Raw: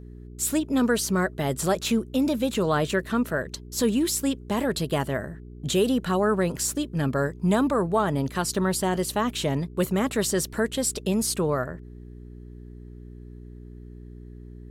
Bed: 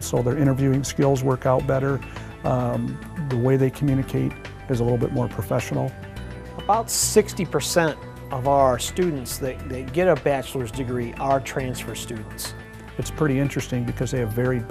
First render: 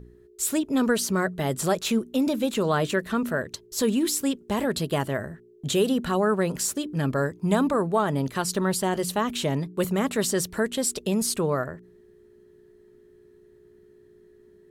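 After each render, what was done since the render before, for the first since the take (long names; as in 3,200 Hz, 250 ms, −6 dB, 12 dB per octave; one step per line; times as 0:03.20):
hum removal 60 Hz, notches 5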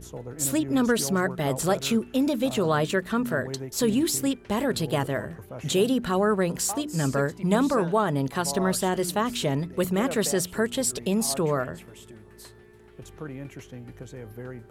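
mix in bed −16.5 dB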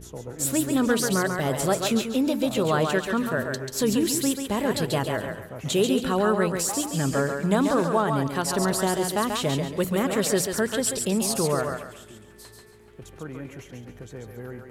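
feedback echo with a high-pass in the loop 138 ms, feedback 33%, high-pass 350 Hz, level −4 dB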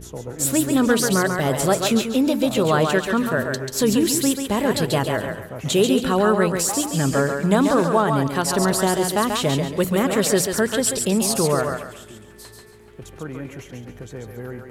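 level +4.5 dB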